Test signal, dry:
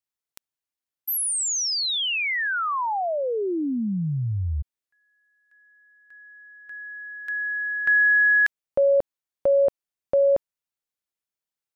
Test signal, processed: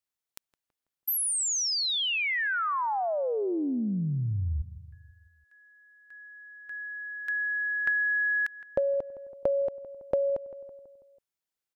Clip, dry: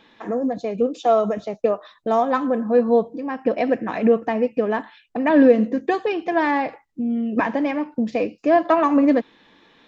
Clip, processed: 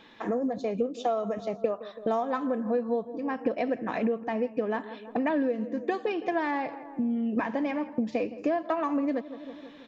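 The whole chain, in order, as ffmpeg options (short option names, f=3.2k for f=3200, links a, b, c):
-filter_complex "[0:a]asplit=2[a][b];[b]adelay=164,lowpass=f=1.6k:p=1,volume=-17.5dB,asplit=2[c][d];[d]adelay=164,lowpass=f=1.6k:p=1,volume=0.54,asplit=2[e][f];[f]adelay=164,lowpass=f=1.6k:p=1,volume=0.54,asplit=2[g][h];[h]adelay=164,lowpass=f=1.6k:p=1,volume=0.54,asplit=2[i][j];[j]adelay=164,lowpass=f=1.6k:p=1,volume=0.54[k];[c][e][g][i][k]amix=inputs=5:normalize=0[l];[a][l]amix=inputs=2:normalize=0,acompressor=threshold=-26dB:ratio=6:attack=31:release=614:knee=6:detection=peak"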